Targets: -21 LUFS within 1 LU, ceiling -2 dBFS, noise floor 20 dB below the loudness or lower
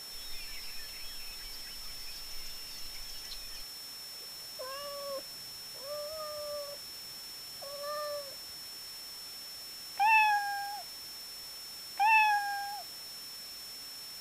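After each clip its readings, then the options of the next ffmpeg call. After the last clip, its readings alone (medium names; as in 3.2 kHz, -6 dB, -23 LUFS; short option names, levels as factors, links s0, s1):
steady tone 5.4 kHz; tone level -44 dBFS; noise floor -45 dBFS; noise floor target -55 dBFS; loudness -35.0 LUFS; peak level -16.5 dBFS; loudness target -21.0 LUFS
-> -af "bandreject=f=5400:w=30"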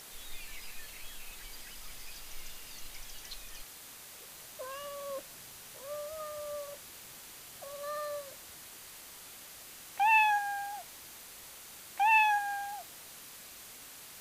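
steady tone not found; noise floor -50 dBFS; noise floor target -54 dBFS
-> -af "afftdn=nr=6:nf=-50"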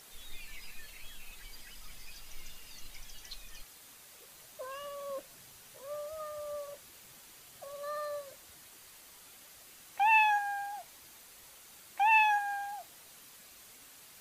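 noise floor -55 dBFS; loudness -31.0 LUFS; peak level -16.5 dBFS; loudness target -21.0 LUFS
-> -af "volume=3.16"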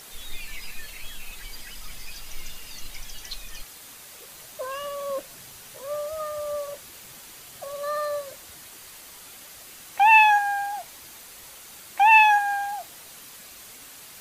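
loudness -21.0 LUFS; peak level -6.5 dBFS; noise floor -45 dBFS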